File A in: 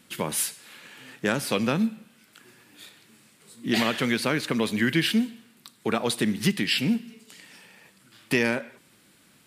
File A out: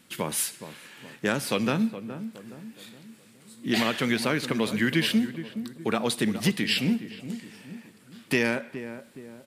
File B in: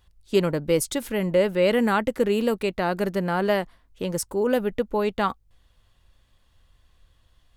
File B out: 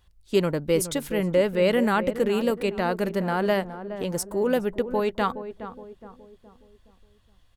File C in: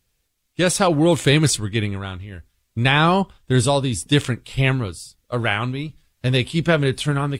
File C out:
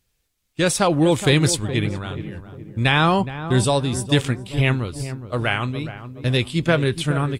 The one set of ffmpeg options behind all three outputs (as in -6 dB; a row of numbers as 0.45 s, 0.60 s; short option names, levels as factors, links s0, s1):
-filter_complex "[0:a]asplit=2[s0][s1];[s1]adelay=418,lowpass=f=1000:p=1,volume=0.299,asplit=2[s2][s3];[s3]adelay=418,lowpass=f=1000:p=1,volume=0.48,asplit=2[s4][s5];[s5]adelay=418,lowpass=f=1000:p=1,volume=0.48,asplit=2[s6][s7];[s7]adelay=418,lowpass=f=1000:p=1,volume=0.48,asplit=2[s8][s9];[s9]adelay=418,lowpass=f=1000:p=1,volume=0.48[s10];[s0][s2][s4][s6][s8][s10]amix=inputs=6:normalize=0,volume=0.891"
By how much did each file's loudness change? -1.5 LU, -1.0 LU, -1.0 LU